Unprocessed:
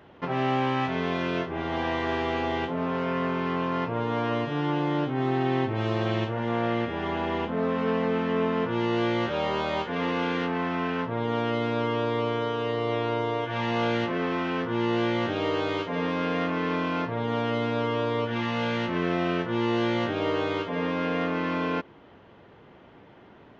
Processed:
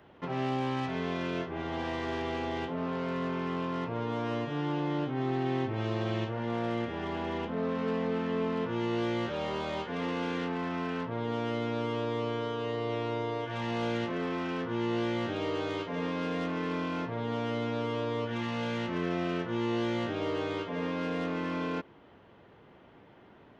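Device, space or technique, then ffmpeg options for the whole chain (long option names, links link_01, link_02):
one-band saturation: -filter_complex "[0:a]acrossover=split=520|3500[link_01][link_02][link_03];[link_02]asoftclip=type=tanh:threshold=-30dB[link_04];[link_01][link_04][link_03]amix=inputs=3:normalize=0,volume=-4.5dB"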